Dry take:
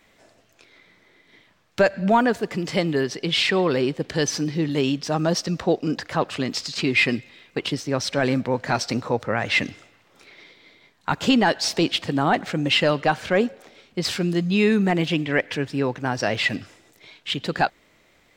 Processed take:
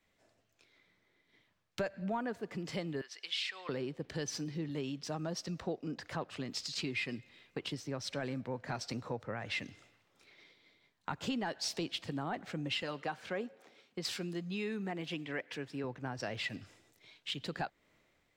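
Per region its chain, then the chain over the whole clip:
3.01–3.69 HPF 1400 Hz + high shelf 7900 Hz -6 dB
12.82–15.84 HPF 230 Hz 6 dB/oct + notch 610 Hz, Q 15
whole clip: bell 110 Hz +2.5 dB 1.4 oct; compressor 3:1, threshold -32 dBFS; three-band expander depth 40%; gain -6.5 dB

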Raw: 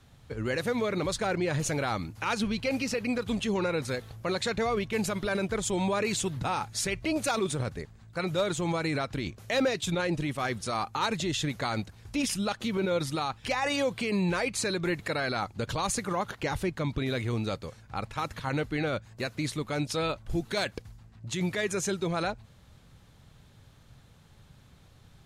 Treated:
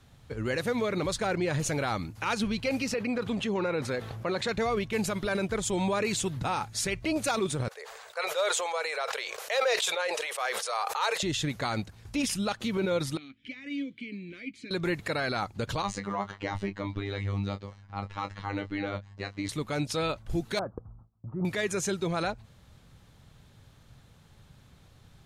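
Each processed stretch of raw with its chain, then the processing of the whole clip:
2.94–4.49 HPF 180 Hz 6 dB/oct + high shelf 4100 Hz -12 dB + fast leveller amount 50%
7.68–11.23 elliptic high-pass 460 Hz + sustainer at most 26 dB/s
13.17–14.71 vowel filter i + low shelf 79 Hz +9 dB + doubler 14 ms -13.5 dB
15.82–19.49 robotiser 100 Hz + air absorption 110 m + doubler 21 ms -8 dB
20.59–21.45 gate with hold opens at -42 dBFS, closes at -47 dBFS + Chebyshev low-pass 1300 Hz, order 5
whole clip: dry

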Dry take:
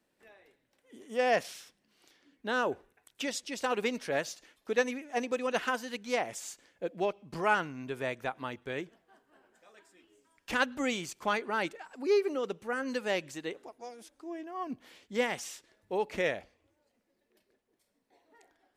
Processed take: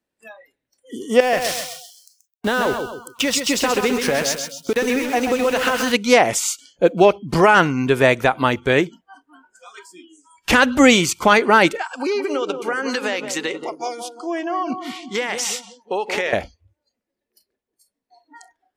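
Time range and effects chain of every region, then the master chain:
1.2–5.92 compressor 8:1, threshold -36 dBFS + sample gate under -48 dBFS + feedback echo 0.131 s, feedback 45%, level -6 dB
11.82–16.33 weighting filter A + compressor 8:1, threshold -39 dBFS + darkening echo 0.177 s, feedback 58%, low-pass 930 Hz, level -6 dB
whole clip: spectral noise reduction 26 dB; bell 62 Hz +6.5 dB 1 oct; maximiser +21.5 dB; gain -1 dB

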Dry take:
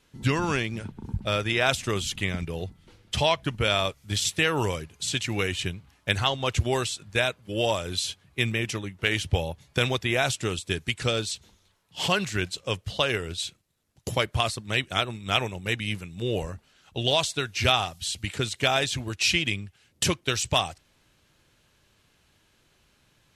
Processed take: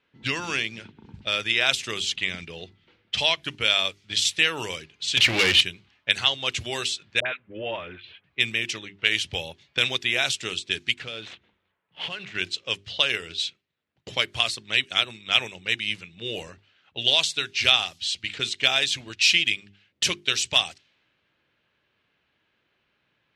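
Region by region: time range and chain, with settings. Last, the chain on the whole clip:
5.17–5.61 air absorption 180 m + sample leveller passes 5
7.2–8.24 LPF 2200 Hz 24 dB/oct + dispersion highs, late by 61 ms, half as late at 850 Hz
10.94–12.35 median filter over 9 samples + compressor 10:1, threshold -28 dBFS
whole clip: notches 50/100/150/200/250/300/350/400 Hz; low-pass opened by the level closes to 1600 Hz, open at -23 dBFS; weighting filter D; gain -5.5 dB

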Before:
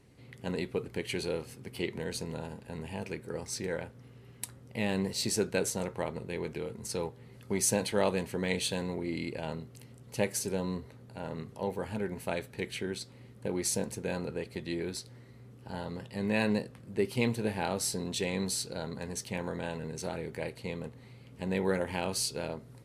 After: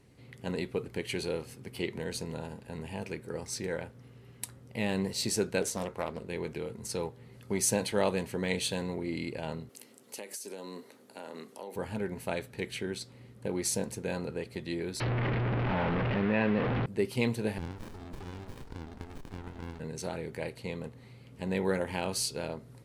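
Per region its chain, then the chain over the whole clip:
5.62–6.29 bell 130 Hz -11.5 dB 0.26 oct + Doppler distortion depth 0.39 ms
9.69–11.76 HPF 240 Hz 24 dB/oct + high shelf 4700 Hz +8.5 dB + compressor 16:1, threshold -37 dBFS
15–16.86 delta modulation 32 kbps, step -30 dBFS + LPF 2600 Hz 24 dB/oct + fast leveller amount 70%
17.58–19.8 HPF 280 Hz + compressor 3:1, threshold -36 dBFS + running maximum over 65 samples
whole clip: dry

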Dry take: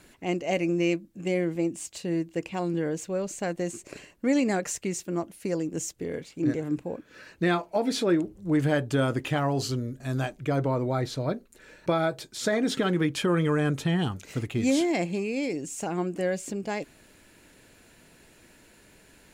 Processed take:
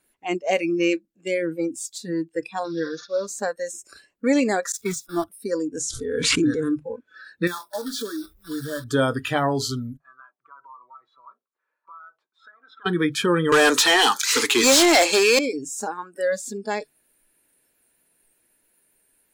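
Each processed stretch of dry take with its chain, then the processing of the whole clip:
2.64–3.27 CVSD 32 kbps + low shelf 270 Hz -8 dB + comb 5.7 ms, depth 60%
4.72–5.24 zero-crossing step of -32 dBFS + gate -30 dBFS, range -19 dB + mismatched tape noise reduction decoder only
5.77–6.76 careless resampling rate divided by 2×, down none, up filtered + backwards sustainer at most 24 dB/s
7.47–8.85 block floating point 3-bit + bell 2500 Hz -3 dB 1.2 oct + compressor 3:1, threshold -32 dBFS
9.97–12.86 band-pass 1100 Hz, Q 4.3 + compressor 10:1, threshold -43 dBFS
13.52–15.39 Bessel high-pass 340 Hz, order 4 + resonant high shelf 3400 Hz +6.5 dB, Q 1.5 + overdrive pedal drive 26 dB, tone 7000 Hz, clips at -13.5 dBFS
whole clip: notches 50/100/150 Hz; spectral noise reduction 22 dB; tone controls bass -7 dB, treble -1 dB; gain +6.5 dB

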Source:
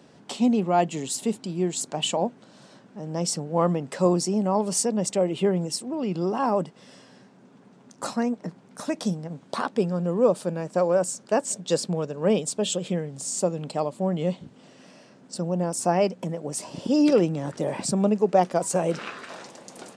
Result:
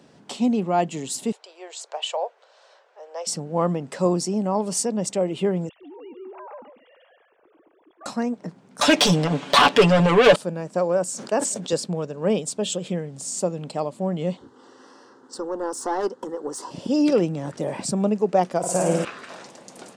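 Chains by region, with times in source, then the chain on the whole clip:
1.32–3.27 steep high-pass 470 Hz 48 dB/oct + air absorption 89 m
5.69–8.06 sine-wave speech + compressor 3:1, threshold -44 dBFS + echo 0.142 s -8 dB
8.81–10.36 overdrive pedal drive 27 dB, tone 4700 Hz, clips at -8 dBFS + bell 3000 Hz +7.5 dB 0.85 oct + comb 6.9 ms, depth 76%
11.08–11.73 HPF 180 Hz + sustainer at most 58 dB/s
14.37–16.71 overdrive pedal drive 17 dB, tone 1700 Hz, clips at -9.5 dBFS + fixed phaser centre 640 Hz, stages 6
18.58–19.05 notch 4200 Hz + flutter echo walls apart 9.3 m, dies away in 1.2 s
whole clip: dry

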